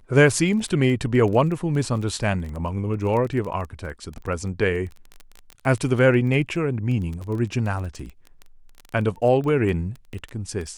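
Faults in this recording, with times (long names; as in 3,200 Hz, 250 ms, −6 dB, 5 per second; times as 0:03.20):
surface crackle 16 per second −29 dBFS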